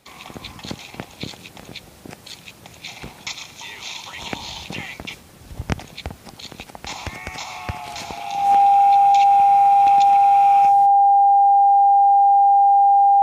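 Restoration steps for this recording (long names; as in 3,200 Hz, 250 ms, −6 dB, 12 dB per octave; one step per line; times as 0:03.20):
clipped peaks rebuilt −8.5 dBFS
notch filter 800 Hz, Q 30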